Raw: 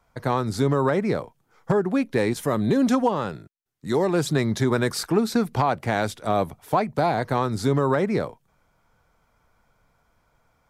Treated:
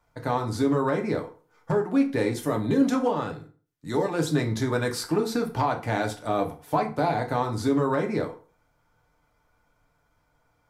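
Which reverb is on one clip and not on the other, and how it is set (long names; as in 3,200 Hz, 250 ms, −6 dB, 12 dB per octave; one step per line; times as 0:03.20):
feedback delay network reverb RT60 0.4 s, low-frequency decay 0.95×, high-frequency decay 0.75×, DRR 2 dB
level −5 dB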